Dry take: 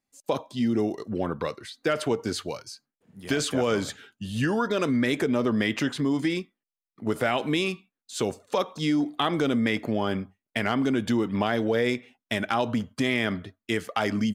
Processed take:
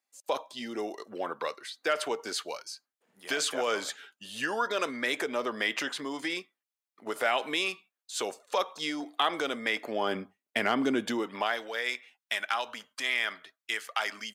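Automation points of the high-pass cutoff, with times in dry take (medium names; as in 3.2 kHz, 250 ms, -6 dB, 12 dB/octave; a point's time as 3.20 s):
9.82 s 600 Hz
10.22 s 290 Hz
10.97 s 290 Hz
11.67 s 1.1 kHz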